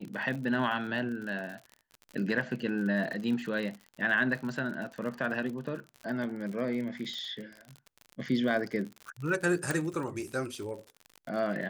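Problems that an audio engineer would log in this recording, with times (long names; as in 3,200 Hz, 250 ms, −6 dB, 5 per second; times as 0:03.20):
surface crackle 54 per second −37 dBFS
0:09.71: click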